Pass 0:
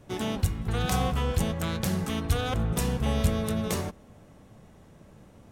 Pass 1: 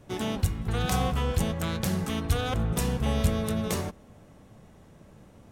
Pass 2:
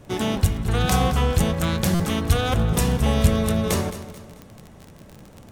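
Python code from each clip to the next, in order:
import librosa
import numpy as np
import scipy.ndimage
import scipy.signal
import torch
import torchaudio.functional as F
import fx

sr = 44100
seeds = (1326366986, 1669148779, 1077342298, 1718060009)

y1 = x
y2 = fx.dmg_crackle(y1, sr, seeds[0], per_s=27.0, level_db=-35.0)
y2 = fx.echo_feedback(y2, sr, ms=218, feedback_pct=39, wet_db=-13.5)
y2 = fx.buffer_glitch(y2, sr, at_s=(1.94,), block=256, repeats=9)
y2 = y2 * 10.0 ** (6.5 / 20.0)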